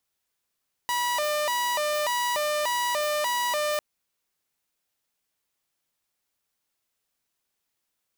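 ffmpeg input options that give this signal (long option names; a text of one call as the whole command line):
ffmpeg -f lavfi -i "aevalsrc='0.0841*(2*mod((785.5*t+186.5/1.7*(0.5-abs(mod(1.7*t,1)-0.5))),1)-1)':duration=2.9:sample_rate=44100" out.wav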